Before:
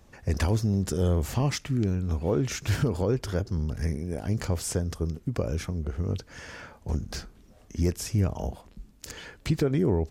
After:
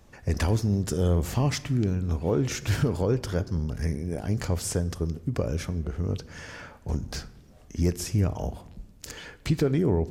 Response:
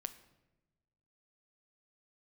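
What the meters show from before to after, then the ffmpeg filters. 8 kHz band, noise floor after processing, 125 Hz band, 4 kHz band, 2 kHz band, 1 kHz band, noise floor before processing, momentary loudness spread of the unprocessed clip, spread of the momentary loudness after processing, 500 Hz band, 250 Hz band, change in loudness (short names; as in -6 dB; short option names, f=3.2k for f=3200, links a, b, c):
+1.0 dB, -53 dBFS, +1.0 dB, +1.0 dB, +1.0 dB, +1.0 dB, -55 dBFS, 14 LU, 15 LU, +1.0 dB, +1.0 dB, +1.0 dB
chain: -filter_complex "[0:a]asplit=2[a][b];[1:a]atrim=start_sample=2205[c];[b][c]afir=irnorm=-1:irlink=0,volume=6dB[d];[a][d]amix=inputs=2:normalize=0,volume=-7dB"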